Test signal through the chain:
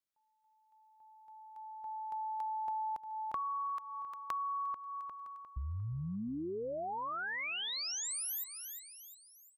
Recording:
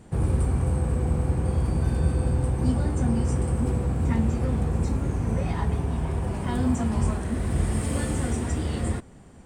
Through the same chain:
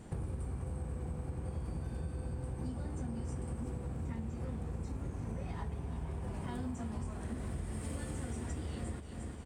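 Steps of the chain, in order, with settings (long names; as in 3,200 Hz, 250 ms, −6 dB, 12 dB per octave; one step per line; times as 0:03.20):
repeating echo 353 ms, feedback 43%, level −14 dB
downward compressor 6 to 1, threshold −35 dBFS
level −2 dB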